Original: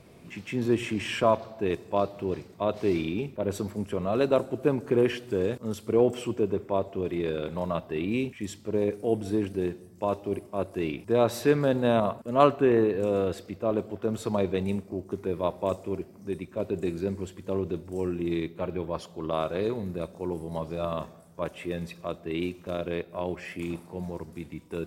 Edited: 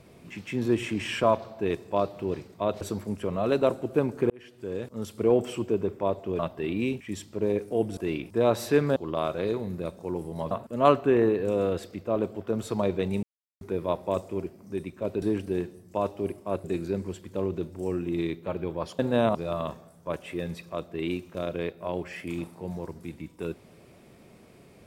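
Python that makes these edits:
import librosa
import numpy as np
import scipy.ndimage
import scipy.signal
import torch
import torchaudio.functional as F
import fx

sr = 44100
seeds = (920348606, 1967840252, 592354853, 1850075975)

y = fx.edit(x, sr, fx.cut(start_s=2.81, length_s=0.69),
    fx.fade_in_span(start_s=4.99, length_s=0.91),
    fx.cut(start_s=7.08, length_s=0.63),
    fx.move(start_s=9.29, length_s=1.42, to_s=16.77),
    fx.swap(start_s=11.7, length_s=0.36, other_s=19.12, other_length_s=1.55),
    fx.silence(start_s=14.78, length_s=0.38), tone=tone)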